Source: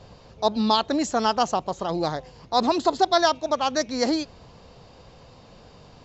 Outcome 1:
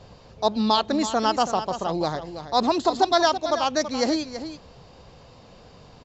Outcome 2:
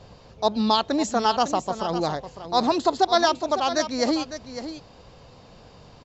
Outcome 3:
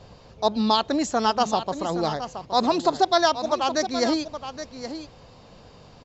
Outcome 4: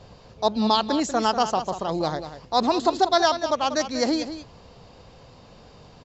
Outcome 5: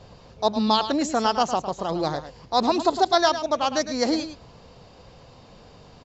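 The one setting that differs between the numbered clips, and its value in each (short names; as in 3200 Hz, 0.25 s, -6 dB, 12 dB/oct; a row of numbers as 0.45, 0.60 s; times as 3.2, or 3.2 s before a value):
echo, time: 0.329, 0.554, 0.82, 0.19, 0.107 s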